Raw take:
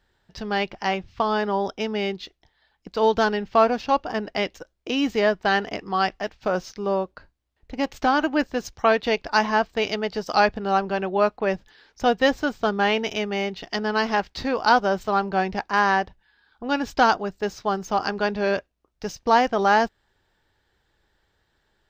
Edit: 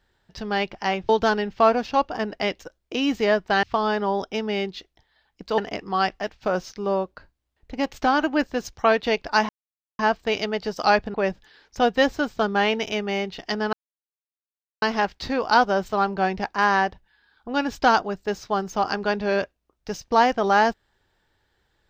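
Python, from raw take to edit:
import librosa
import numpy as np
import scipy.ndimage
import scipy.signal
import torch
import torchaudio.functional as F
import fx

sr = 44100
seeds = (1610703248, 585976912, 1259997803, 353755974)

y = fx.edit(x, sr, fx.move(start_s=1.09, length_s=1.95, to_s=5.58),
    fx.insert_silence(at_s=9.49, length_s=0.5),
    fx.cut(start_s=10.64, length_s=0.74),
    fx.insert_silence(at_s=13.97, length_s=1.09), tone=tone)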